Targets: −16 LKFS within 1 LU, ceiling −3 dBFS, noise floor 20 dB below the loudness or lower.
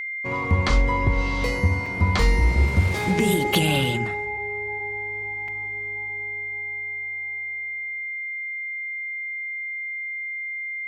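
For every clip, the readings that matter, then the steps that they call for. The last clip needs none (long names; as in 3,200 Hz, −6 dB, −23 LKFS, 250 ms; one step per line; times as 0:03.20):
number of dropouts 2; longest dropout 3.3 ms; interfering tone 2,100 Hz; level of the tone −28 dBFS; integrated loudness −24.5 LKFS; sample peak −7.0 dBFS; target loudness −16.0 LKFS
→ repair the gap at 0:01.86/0:05.48, 3.3 ms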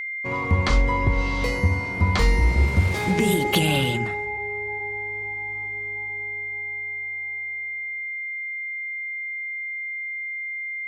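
number of dropouts 0; interfering tone 2,100 Hz; level of the tone −28 dBFS
→ notch filter 2,100 Hz, Q 30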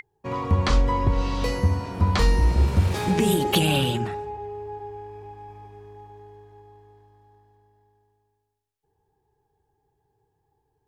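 interfering tone none found; integrated loudness −23.0 LKFS; sample peak −7.5 dBFS; target loudness −16.0 LKFS
→ level +7 dB
brickwall limiter −3 dBFS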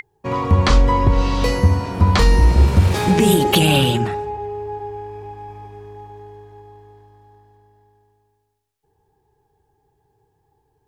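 integrated loudness −16.5 LKFS; sample peak −3.0 dBFS; background noise floor −68 dBFS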